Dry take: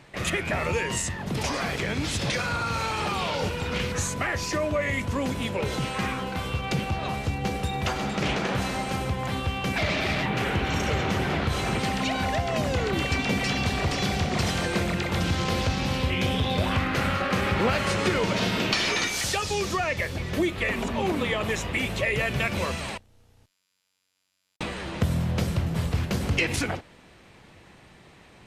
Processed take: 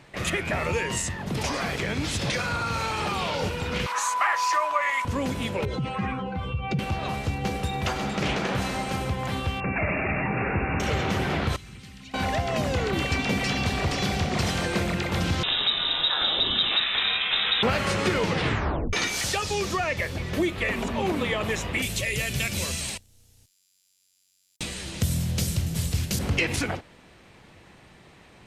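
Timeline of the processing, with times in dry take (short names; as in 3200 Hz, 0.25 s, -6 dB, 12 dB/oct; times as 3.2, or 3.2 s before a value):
3.86–5.05 resonant high-pass 1000 Hz, resonance Q 5.5
5.65–6.79 spectral contrast raised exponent 1.7
9.6–10.8 brick-wall FIR low-pass 2800 Hz
11.56–12.14 passive tone stack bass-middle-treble 6-0-2
15.43–17.63 inverted band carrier 3800 Hz
18.25 tape stop 0.68 s
21.82–26.19 EQ curve 110 Hz 0 dB, 1100 Hz -10 dB, 7300 Hz +12 dB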